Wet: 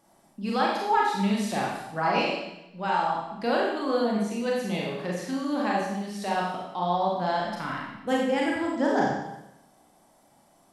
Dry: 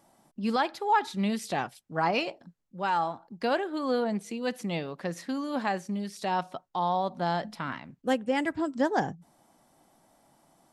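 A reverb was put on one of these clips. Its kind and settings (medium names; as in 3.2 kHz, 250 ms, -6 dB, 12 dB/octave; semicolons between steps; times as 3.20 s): Schroeder reverb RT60 0.9 s, combs from 30 ms, DRR -3.5 dB; trim -2 dB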